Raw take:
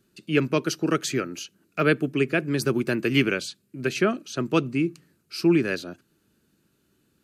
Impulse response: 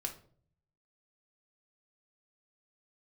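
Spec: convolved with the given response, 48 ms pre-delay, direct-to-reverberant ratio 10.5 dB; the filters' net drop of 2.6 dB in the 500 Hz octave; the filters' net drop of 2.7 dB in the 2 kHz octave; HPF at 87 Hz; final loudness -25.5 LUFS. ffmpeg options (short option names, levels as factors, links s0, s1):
-filter_complex "[0:a]highpass=87,equalizer=f=500:t=o:g=-3.5,equalizer=f=2000:t=o:g=-3.5,asplit=2[s0][s1];[1:a]atrim=start_sample=2205,adelay=48[s2];[s1][s2]afir=irnorm=-1:irlink=0,volume=0.299[s3];[s0][s3]amix=inputs=2:normalize=0,volume=1.12"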